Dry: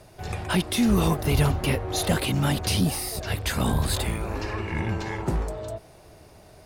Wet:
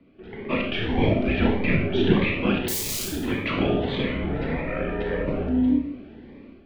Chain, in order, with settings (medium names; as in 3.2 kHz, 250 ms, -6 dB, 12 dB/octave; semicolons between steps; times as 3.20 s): high-pass 320 Hz; mistuned SSB -370 Hz 570–3000 Hz; level rider gain up to 12 dB; 2.68–3.08 s: integer overflow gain 25.5 dB; peaking EQ 1.2 kHz -14 dB 2.3 oct; Schroeder reverb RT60 0.64 s, combs from 28 ms, DRR 1.5 dB; Shepard-style phaser rising 1.7 Hz; trim +3.5 dB